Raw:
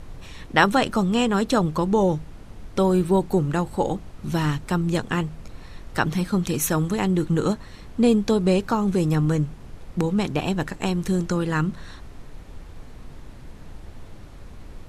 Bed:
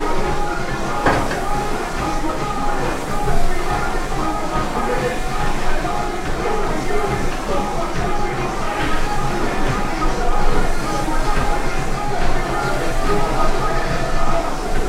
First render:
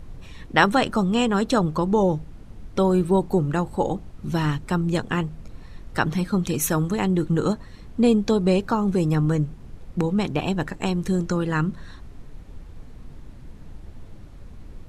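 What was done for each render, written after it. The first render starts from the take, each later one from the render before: denoiser 6 dB, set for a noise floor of -42 dBFS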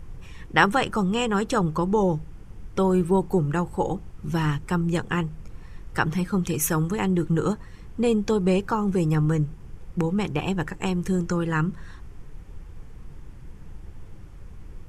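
thirty-one-band EQ 250 Hz -9 dB, 630 Hz -8 dB, 4000 Hz -9 dB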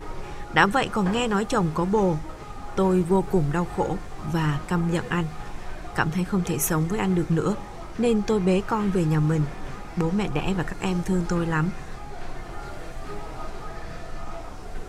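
add bed -18 dB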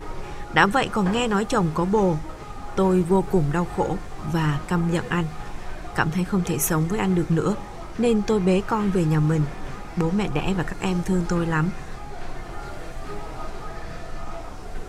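gain +1.5 dB; limiter -3 dBFS, peak gain reduction 0.5 dB

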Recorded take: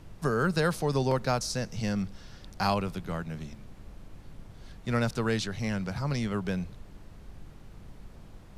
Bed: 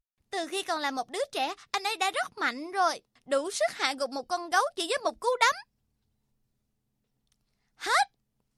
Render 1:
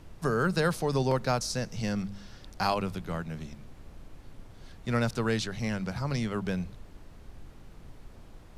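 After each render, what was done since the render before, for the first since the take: de-hum 50 Hz, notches 4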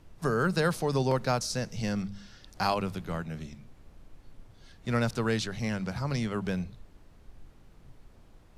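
noise print and reduce 6 dB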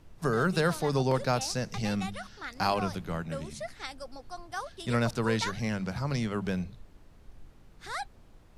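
add bed -12 dB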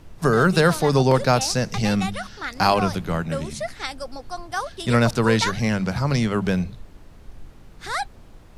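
gain +9.5 dB

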